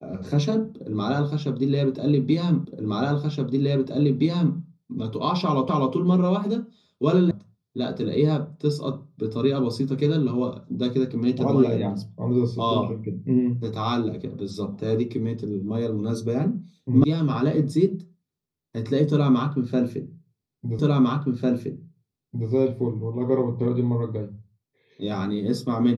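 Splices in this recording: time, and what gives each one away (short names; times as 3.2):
2.65 repeat of the last 1.92 s
5.69 repeat of the last 0.25 s
7.31 sound cut off
17.04 sound cut off
20.79 repeat of the last 1.7 s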